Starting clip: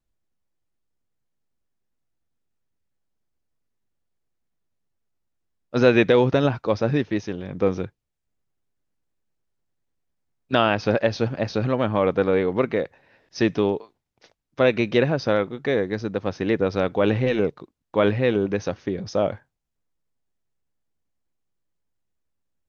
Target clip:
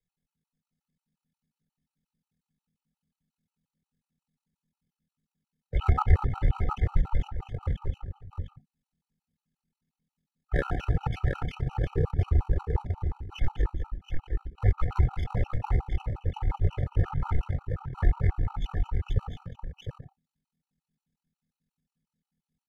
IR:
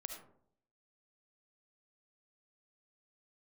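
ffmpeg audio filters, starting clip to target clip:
-filter_complex "[0:a]aeval=exprs='if(lt(val(0),0),0.447*val(0),val(0))':c=same,aecho=1:1:217|230|428|712:0.316|0.112|0.133|0.501,afreqshift=-340,acrossover=split=110[a][b];[a]aeval=exprs='clip(val(0),-1,0.0708)':c=same[c];[b]tremolo=f=76:d=0.857[d];[c][d]amix=inputs=2:normalize=0,aecho=1:1:1.4:0.95,asetrate=26222,aresample=44100,atempo=1.68179,afftfilt=real='re*gt(sin(2*PI*5.6*pts/sr)*(1-2*mod(floor(b*sr/1024/770),2)),0)':imag='im*gt(sin(2*PI*5.6*pts/sr)*(1-2*mod(floor(b*sr/1024/770),2)),0)':win_size=1024:overlap=0.75"

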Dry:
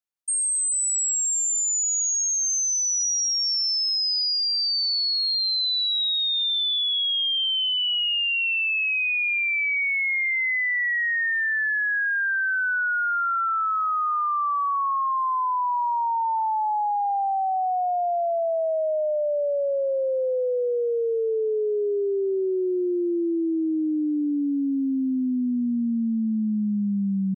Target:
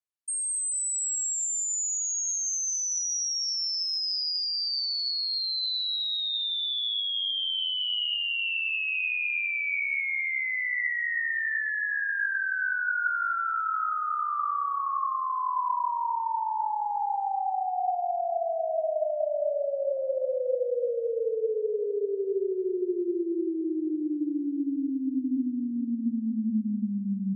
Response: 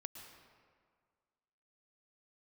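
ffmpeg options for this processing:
-filter_complex "[0:a]asplit=3[a][b][c];[a]afade=t=out:st=12.57:d=0.02[d];[b]highshelf=f=5.4k:g=8,afade=t=in:st=12.57:d=0.02,afade=t=out:st=13.9:d=0.02[e];[c]afade=t=in:st=13.9:d=0.02[f];[d][e][f]amix=inputs=3:normalize=0[g];[1:a]atrim=start_sample=2205,asetrate=25137,aresample=44100[h];[g][h]afir=irnorm=-1:irlink=0,volume=-4dB"

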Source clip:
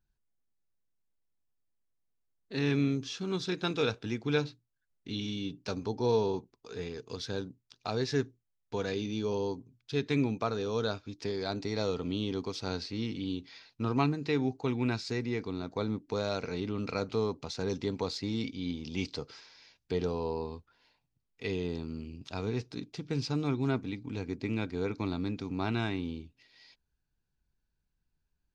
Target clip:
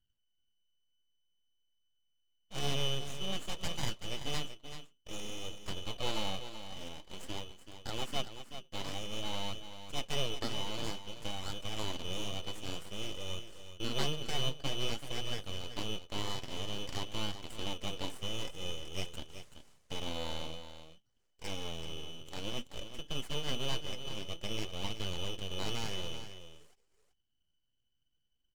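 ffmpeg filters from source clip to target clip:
-filter_complex "[0:a]highshelf=f=4k:t=q:w=1.5:g=-7.5,bandreject=f=460:w=12,aeval=exprs='val(0)*sin(2*PI*1500*n/s)':c=same,acrossover=split=680[a][b];[b]aeval=exprs='abs(val(0))':c=same[c];[a][c]amix=inputs=2:normalize=0,flanger=delay=0.6:depth=7.4:regen=64:speed=0.52:shape=sinusoidal,asplit=2[d][e];[e]aecho=0:1:381:0.299[f];[d][f]amix=inputs=2:normalize=0,volume=3.5dB"

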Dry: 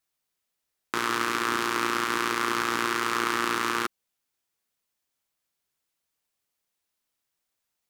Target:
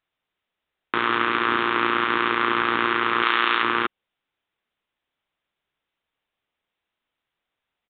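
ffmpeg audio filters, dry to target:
-filter_complex "[0:a]asettb=1/sr,asplit=3[a][b][c];[a]atrim=end=3.224[d];[b]atrim=start=3.22:end=3.63,asetpts=PTS-STARTPTS,afade=t=in:d=0.004:c=qsin,afade=t=out:st=0.406:d=0.004:c=qsin,aemphasis=mode=production:type=riaa[e];[c]atrim=start=3.626[f];[d][e]acrossfade=d=0.004:c1=hsin:c2=qsin[g];[g][f]acrossfade=d=0.004:c1=qsin:c2=hsin,aresample=8000,aresample=44100,equalizer=f=140:t=o:w=2:g=-2,volume=5.5dB"

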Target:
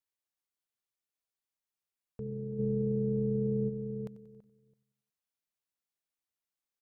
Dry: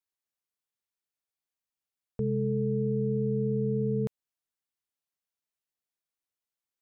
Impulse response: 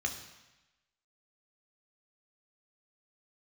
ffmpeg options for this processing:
-filter_complex "[0:a]asplit=2[a][b];[b]aecho=0:1:92|184|276|368:0.0708|0.0389|0.0214|0.0118[c];[a][c]amix=inputs=2:normalize=0,alimiter=level_in=5.5dB:limit=-24dB:level=0:latency=1:release=18,volume=-5.5dB,asplit=2[d][e];[e]adelay=332,lowpass=f=860:p=1,volume=-15dB,asplit=2[f][g];[g]adelay=332,lowpass=f=860:p=1,volume=0.21[h];[f][h]amix=inputs=2:normalize=0[i];[d][i]amix=inputs=2:normalize=0,asplit=3[j][k][l];[j]afade=t=out:st=2.58:d=0.02[m];[k]acontrast=83,afade=t=in:st=2.58:d=0.02,afade=t=out:st=3.68:d=0.02[n];[l]afade=t=in:st=3.68:d=0.02[o];[m][n][o]amix=inputs=3:normalize=0,volume=-2.5dB"

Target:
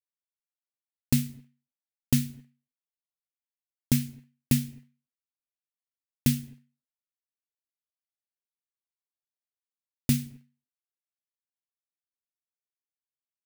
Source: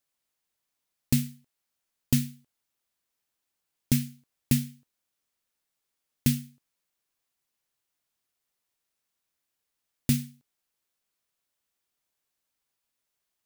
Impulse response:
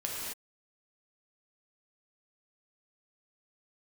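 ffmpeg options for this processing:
-filter_complex "[0:a]agate=range=-33dB:threshold=-51dB:ratio=3:detection=peak,asplit=2[a][b];[1:a]atrim=start_sample=2205,lowpass=2.1k[c];[b][c]afir=irnorm=-1:irlink=0,volume=-24dB[d];[a][d]amix=inputs=2:normalize=0"

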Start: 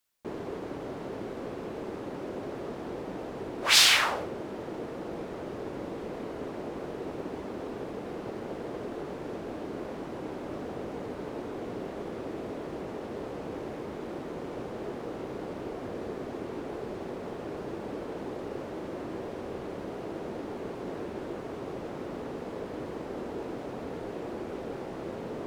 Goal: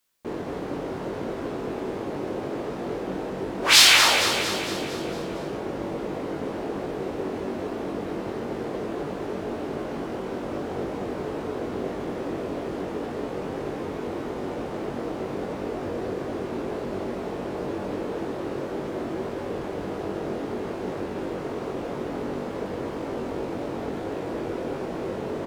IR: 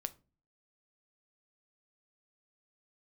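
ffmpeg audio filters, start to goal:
-filter_complex "[0:a]asplit=2[a][b];[b]adelay=21,volume=-4dB[c];[a][c]amix=inputs=2:normalize=0,aecho=1:1:229|458|687|916|1145|1374|1603:0.447|0.25|0.14|0.0784|0.0439|0.0246|0.0138,volume=4dB"

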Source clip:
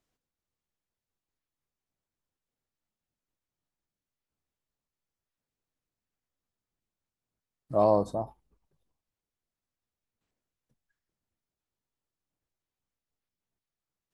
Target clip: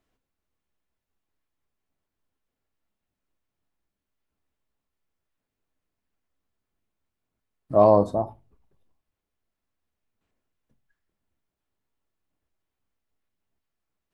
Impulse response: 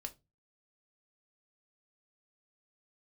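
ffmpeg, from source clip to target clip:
-filter_complex "[0:a]asplit=2[a][b];[1:a]atrim=start_sample=2205,lowpass=3.7k[c];[b][c]afir=irnorm=-1:irlink=0,volume=4.5dB[d];[a][d]amix=inputs=2:normalize=0"

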